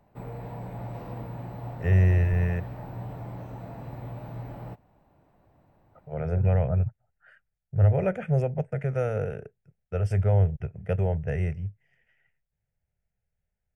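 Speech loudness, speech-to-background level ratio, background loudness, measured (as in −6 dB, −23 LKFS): −26.0 LKFS, 13.0 dB, −39.0 LKFS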